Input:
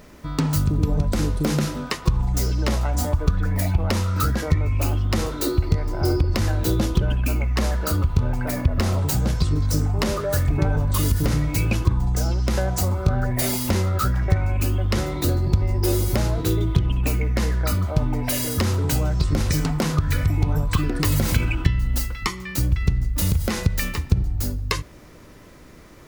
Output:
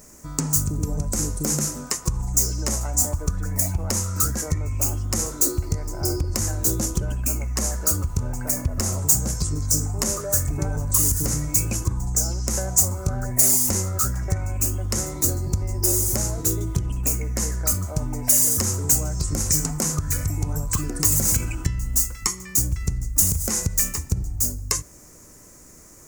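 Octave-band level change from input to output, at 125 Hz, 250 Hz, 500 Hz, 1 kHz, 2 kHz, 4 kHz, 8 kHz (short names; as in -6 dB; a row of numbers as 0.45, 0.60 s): -5.0, -5.0, -5.0, -5.5, -7.0, -1.0, +12.5 dB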